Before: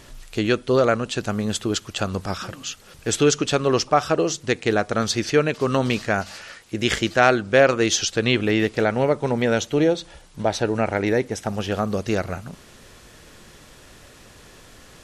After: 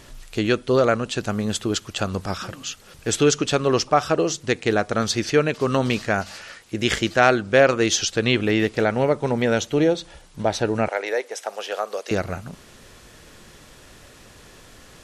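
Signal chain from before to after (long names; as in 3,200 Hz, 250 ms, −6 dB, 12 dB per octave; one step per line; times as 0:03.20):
0:10.88–0:12.11: Chebyshev high-pass filter 500 Hz, order 3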